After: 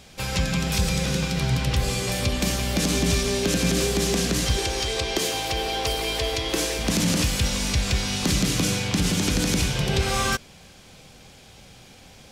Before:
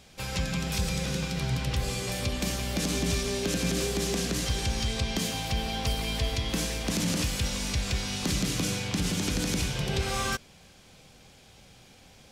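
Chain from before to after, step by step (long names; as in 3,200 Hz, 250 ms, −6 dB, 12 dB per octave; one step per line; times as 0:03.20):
0:04.57–0:06.79: low shelf with overshoot 280 Hz −7.5 dB, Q 3
level +6 dB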